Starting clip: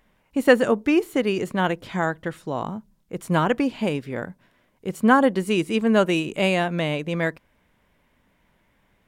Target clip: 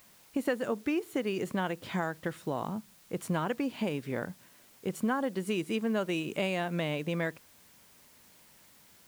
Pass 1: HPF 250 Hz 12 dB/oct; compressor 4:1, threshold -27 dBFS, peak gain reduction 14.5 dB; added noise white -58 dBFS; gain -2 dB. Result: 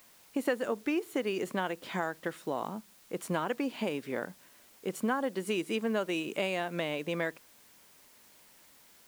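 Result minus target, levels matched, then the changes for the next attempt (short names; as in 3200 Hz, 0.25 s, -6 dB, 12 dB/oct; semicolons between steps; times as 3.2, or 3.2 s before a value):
125 Hz band -5.5 dB
change: HPF 78 Hz 12 dB/oct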